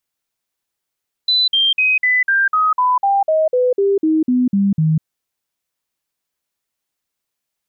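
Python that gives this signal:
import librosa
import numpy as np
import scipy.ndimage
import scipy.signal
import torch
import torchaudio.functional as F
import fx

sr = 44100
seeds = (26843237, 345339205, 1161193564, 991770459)

y = fx.stepped_sweep(sr, from_hz=4000.0, direction='down', per_octave=3, tones=15, dwell_s=0.2, gap_s=0.05, level_db=-11.5)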